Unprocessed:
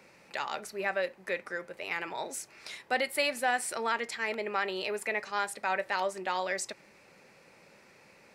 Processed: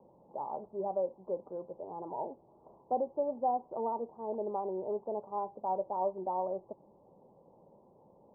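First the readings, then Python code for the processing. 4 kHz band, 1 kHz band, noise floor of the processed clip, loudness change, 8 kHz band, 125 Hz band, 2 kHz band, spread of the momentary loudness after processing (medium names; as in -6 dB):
under -40 dB, -1.5 dB, -63 dBFS, -3.5 dB, under -40 dB, no reading, under -40 dB, 10 LU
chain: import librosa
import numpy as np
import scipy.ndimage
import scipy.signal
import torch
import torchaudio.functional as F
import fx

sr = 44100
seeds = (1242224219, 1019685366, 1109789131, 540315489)

y = scipy.signal.sosfilt(scipy.signal.butter(12, 990.0, 'lowpass', fs=sr, output='sos'), x)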